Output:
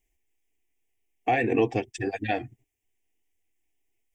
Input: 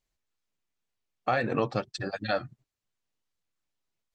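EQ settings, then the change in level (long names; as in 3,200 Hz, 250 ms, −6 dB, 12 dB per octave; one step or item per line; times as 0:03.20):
flat-topped bell 1,200 Hz −11.5 dB 1.1 octaves
phaser with its sweep stopped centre 860 Hz, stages 8
+9.0 dB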